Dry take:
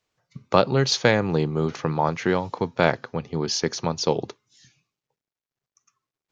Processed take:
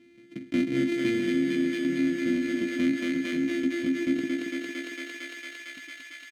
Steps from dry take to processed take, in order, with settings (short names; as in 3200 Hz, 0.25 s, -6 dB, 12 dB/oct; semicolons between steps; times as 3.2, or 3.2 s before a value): sample sorter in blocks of 128 samples; vowel filter i; bell 3100 Hz -6.5 dB 1.4 oct; doubler 15 ms -7 dB; on a send: thinning echo 0.227 s, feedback 78%, high-pass 430 Hz, level -3.5 dB; on the sum: fast leveller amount 50%; gain +2 dB